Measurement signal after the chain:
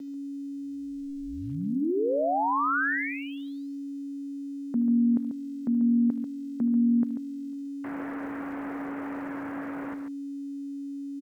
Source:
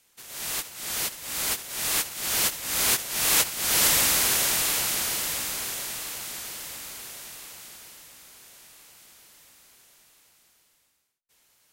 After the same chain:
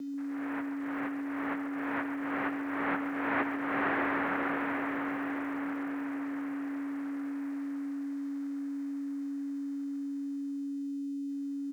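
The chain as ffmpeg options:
ffmpeg -i in.wav -af "aeval=exprs='val(0)+0.02*sin(2*PI*480*n/s)':channel_layout=same,highpass=frequency=430:width_type=q:width=0.5412,highpass=frequency=430:width_type=q:width=1.307,lowpass=frequency=2100:width_type=q:width=0.5176,lowpass=frequency=2100:width_type=q:width=0.7071,lowpass=frequency=2100:width_type=q:width=1.932,afreqshift=-200,aecho=1:1:75|140:0.158|0.355,aeval=exprs='val(0)*gte(abs(val(0)),0.00224)':channel_layout=same" out.wav

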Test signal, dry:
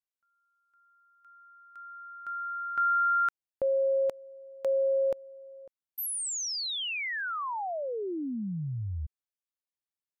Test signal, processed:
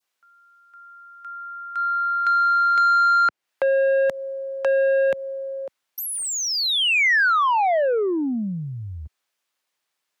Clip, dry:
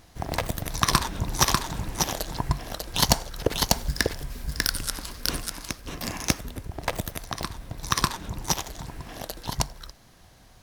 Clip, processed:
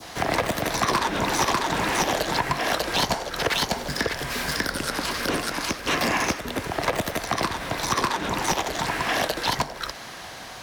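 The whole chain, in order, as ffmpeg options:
ffmpeg -i in.wav -filter_complex "[0:a]acrossover=split=91|190|650[link_01][link_02][link_03][link_04];[link_01]acompressor=threshold=-39dB:ratio=4[link_05];[link_02]acompressor=threshold=-45dB:ratio=4[link_06];[link_03]acompressor=threshold=-36dB:ratio=4[link_07];[link_04]acompressor=threshold=-39dB:ratio=4[link_08];[link_05][link_06][link_07][link_08]amix=inputs=4:normalize=0,asplit=2[link_09][link_10];[link_10]highpass=frequency=720:poles=1,volume=29dB,asoftclip=type=tanh:threshold=-10dB[link_11];[link_09][link_11]amix=inputs=2:normalize=0,lowpass=frequency=4000:poles=1,volume=-6dB,adynamicequalizer=threshold=0.0251:dfrequency=1900:dqfactor=0.9:tfrequency=1900:tqfactor=0.9:attack=5:release=100:ratio=0.375:range=2:mode=boostabove:tftype=bell,volume=-1.5dB" out.wav

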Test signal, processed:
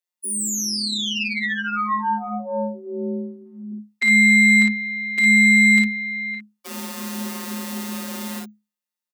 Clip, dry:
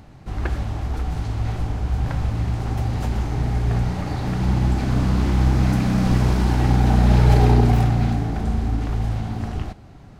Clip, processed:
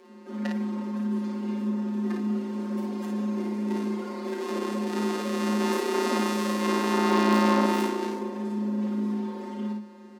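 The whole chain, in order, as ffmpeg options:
ffmpeg -i in.wav -filter_complex "[0:a]afftfilt=real='hypot(re,im)*cos(PI*b)':imag='0':win_size=1024:overlap=0.75,aeval=exprs='0.473*(cos(1*acos(clip(val(0)/0.473,-1,1)))-cos(1*PI/2))+0.0422*(cos(8*acos(clip(val(0)/0.473,-1,1)))-cos(8*PI/2))':channel_layout=same,asplit=2[link_01][link_02];[link_02]aecho=0:1:22|36|55:0.266|0.398|0.668[link_03];[link_01][link_03]amix=inputs=2:normalize=0,adynamicequalizer=threshold=0.0112:dfrequency=900:dqfactor=2.2:tfrequency=900:tqfactor=2.2:attack=5:release=100:ratio=0.375:range=1.5:mode=boostabove:tftype=bell,afreqshift=210,volume=-1.5dB" out.wav

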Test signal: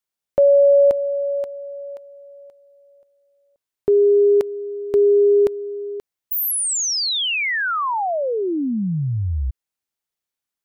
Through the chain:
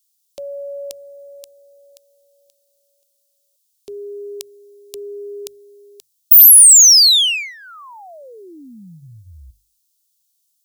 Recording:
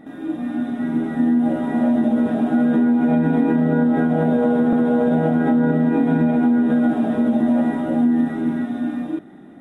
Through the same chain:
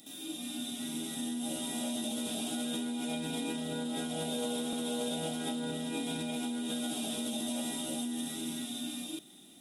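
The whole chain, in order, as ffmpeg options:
ffmpeg -i in.wav -filter_complex "[0:a]highshelf=frequency=3300:gain=7.5,bandreject=frequency=50:width_type=h:width=6,bandreject=frequency=100:width_type=h:width=6,bandreject=frequency=150:width_type=h:width=6,acrossover=split=320[link_01][link_02];[link_01]alimiter=limit=-19.5dB:level=0:latency=1:release=14[link_03];[link_02]aexciter=amount=13.6:drive=8.3:freq=2800[link_04];[link_03][link_04]amix=inputs=2:normalize=0,volume=-17dB" out.wav

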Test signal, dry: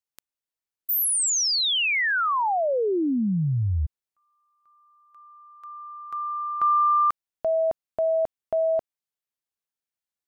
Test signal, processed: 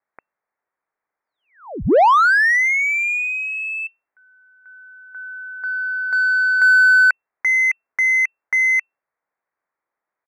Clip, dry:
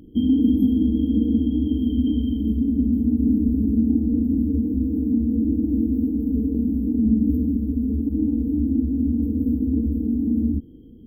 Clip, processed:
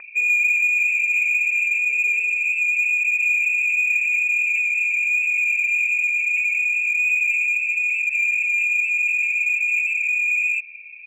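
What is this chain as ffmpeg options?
ffmpeg -i in.wav -filter_complex "[0:a]firequalizer=gain_entry='entry(140,0);entry(260,7);entry(760,15)':delay=0.05:min_phase=1,lowpass=frequency=2300:width_type=q:width=0.5098,lowpass=frequency=2300:width_type=q:width=0.6013,lowpass=frequency=2300:width_type=q:width=0.9,lowpass=frequency=2300:width_type=q:width=2.563,afreqshift=-2700,asplit=2[link_01][link_02];[link_02]highpass=frequency=720:poles=1,volume=12dB,asoftclip=type=tanh:threshold=-7.5dB[link_03];[link_01][link_03]amix=inputs=2:normalize=0,lowpass=frequency=1000:poles=1,volume=-6dB" out.wav

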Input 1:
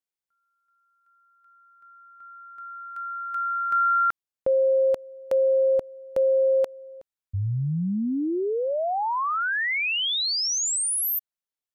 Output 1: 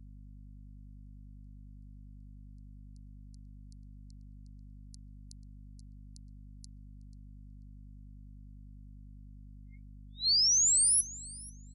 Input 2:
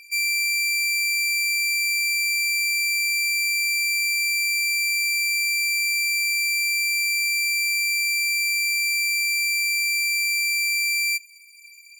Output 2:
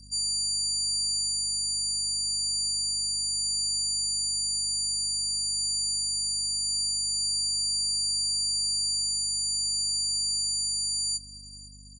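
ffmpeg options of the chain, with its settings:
ffmpeg -i in.wav -filter_complex "[0:a]afftfilt=real='re*between(b*sr/4096,2100,11000)':imag='im*between(b*sr/4096,2100,11000)':win_size=4096:overlap=0.75,asplit=2[link_01][link_02];[link_02]adelay=488,lowpass=frequency=3100:poles=1,volume=-12dB,asplit=2[link_03][link_04];[link_04]adelay=488,lowpass=frequency=3100:poles=1,volume=0.3,asplit=2[link_05][link_06];[link_06]adelay=488,lowpass=frequency=3100:poles=1,volume=0.3[link_07];[link_03][link_05][link_07]amix=inputs=3:normalize=0[link_08];[link_01][link_08]amix=inputs=2:normalize=0,aeval=exprs='val(0)+0.00355*(sin(2*PI*50*n/s)+sin(2*PI*2*50*n/s)/2+sin(2*PI*3*50*n/s)/3+sin(2*PI*4*50*n/s)/4+sin(2*PI*5*50*n/s)/5)':channel_layout=same,asuperstop=centerf=2800:order=20:qfactor=1.2" out.wav

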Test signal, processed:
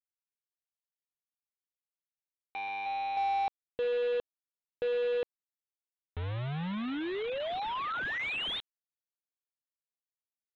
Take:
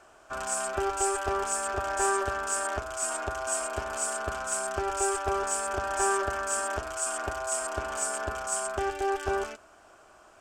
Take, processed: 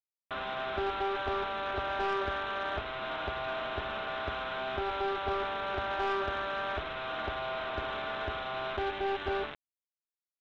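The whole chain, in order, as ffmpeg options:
ffmpeg -i in.wav -af "aresample=8000,acrusher=bits=5:mix=0:aa=0.000001,aresample=44100,asoftclip=type=tanh:threshold=-22dB,volume=-2dB" out.wav

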